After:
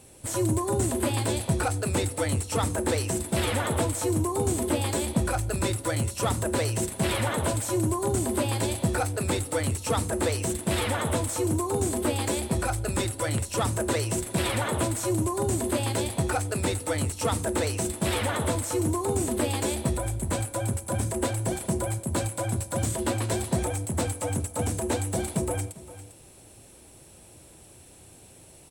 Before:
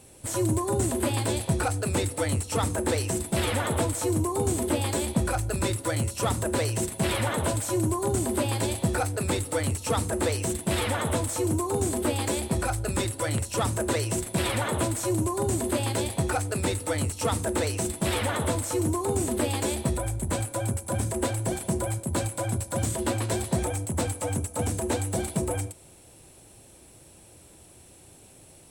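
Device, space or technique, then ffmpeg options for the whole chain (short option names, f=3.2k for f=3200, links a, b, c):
ducked delay: -filter_complex "[0:a]asplit=3[a][b][c];[b]adelay=399,volume=-6.5dB[d];[c]apad=whole_len=1283501[e];[d][e]sidechaincompress=threshold=-41dB:ratio=8:attack=16:release=679[f];[a][f]amix=inputs=2:normalize=0"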